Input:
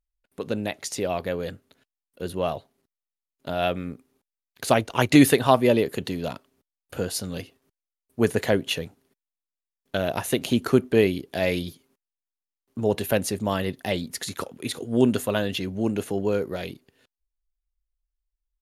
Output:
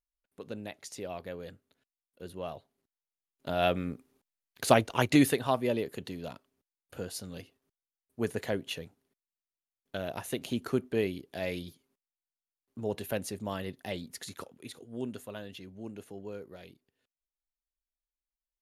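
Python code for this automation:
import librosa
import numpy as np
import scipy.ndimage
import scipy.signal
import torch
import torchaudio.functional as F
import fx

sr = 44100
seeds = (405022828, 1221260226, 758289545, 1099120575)

y = fx.gain(x, sr, db=fx.line((2.47, -12.5), (3.69, -2.0), (4.73, -2.0), (5.42, -10.5), (14.32, -10.5), (14.92, -17.5)))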